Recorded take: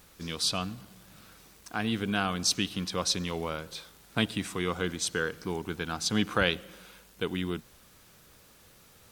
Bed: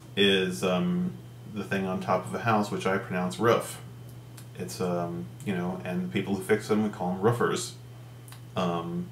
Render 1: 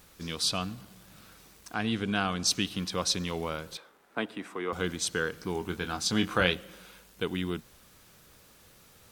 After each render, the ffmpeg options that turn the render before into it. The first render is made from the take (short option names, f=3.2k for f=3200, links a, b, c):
-filter_complex "[0:a]asettb=1/sr,asplit=3[a][b][c];[a]atrim=end=1.744[d];[b]atrim=start=1.74:end=2.47,asetpts=PTS-STARTPTS,afade=t=in:d=0.004:c=qsin,afade=t=out:st=0.726:d=0.004:c=qsin,lowpass=8.8k[e];[c]atrim=start=2.466[f];[d][e]acrossfade=d=0.004:c1=hsin:c2=qsin[g];[g][f]acrossfade=d=0.004:c1=qsin:c2=hsin,asettb=1/sr,asplit=3[h][i][j];[h]atrim=end=3.774[k];[i]atrim=start=3.77:end=4.73,asetpts=PTS-STARTPTS,afade=t=in:d=0.004:c=qsin,afade=t=out:st=0.956:d=0.004:c=qsin,acrossover=split=250 2100:gain=0.0708 1 0.178[l][m][n];[l][m][n]amix=inputs=3:normalize=0[o];[j]atrim=start=4.726[p];[k][o]acrossfade=d=0.004:c1=hsin:c2=qsin[q];[q][p]acrossfade=d=0.004:c1=qsin:c2=hsin,asettb=1/sr,asplit=3[r][s][t];[r]atrim=end=5.534[u];[s]atrim=start=5.53:end=6.53,asetpts=PTS-STARTPTS,afade=t=in:d=0.004:c=qsin,afade=t=out:st=0.996:d=0.004:c=qsin,asplit=2[v][w];[w]adelay=22,volume=-8dB[x];[v][x]amix=inputs=2:normalize=0,atrim=end_sample=44100[y];[t]atrim=start=6.526[z];[u][y]acrossfade=d=0.004:c1=hsin:c2=qsin[aa];[aa][z]acrossfade=d=0.004:c1=qsin:c2=hsin"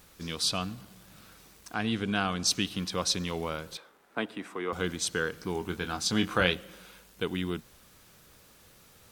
-af anull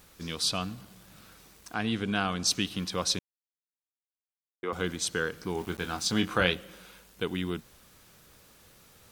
-filter_complex "[0:a]asettb=1/sr,asplit=3[a][b][c];[a]atrim=end=5.584[d];[b]atrim=start=5.58:end=6.21,asetpts=PTS-STARTPTS,afade=t=in:d=0.004:c=qsin,afade=t=out:st=0.626:d=0.004:c=qsin,aeval=exprs='val(0)*gte(abs(val(0)),0.00708)':c=same[e];[c]atrim=start=6.206[f];[d][e]acrossfade=d=0.004:c1=hsin:c2=qsin[g];[g][f]acrossfade=d=0.004:c1=qsin:c2=hsin,asplit=3[h][i][j];[h]atrim=end=3.19,asetpts=PTS-STARTPTS,afade=t=out:st=3.186:d=0.004:c=hsin[k];[i]atrim=start=3.19:end=4.63,asetpts=PTS-STARTPTS,volume=0[l];[j]atrim=start=4.63,asetpts=PTS-STARTPTS,afade=t=in:d=0.004:c=hsin[m];[k][l][m]concat=n=3:v=0:a=1"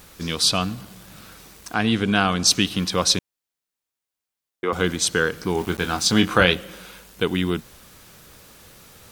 -af "volume=9.5dB,alimiter=limit=-1dB:level=0:latency=1"